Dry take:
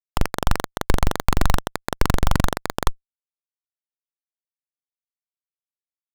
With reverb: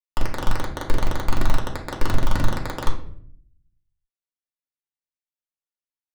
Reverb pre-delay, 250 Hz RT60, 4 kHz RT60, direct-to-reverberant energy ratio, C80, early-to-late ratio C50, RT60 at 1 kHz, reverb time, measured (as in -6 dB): 3 ms, 0.90 s, 0.40 s, -2.5 dB, 12.5 dB, 8.0 dB, 0.50 s, 0.60 s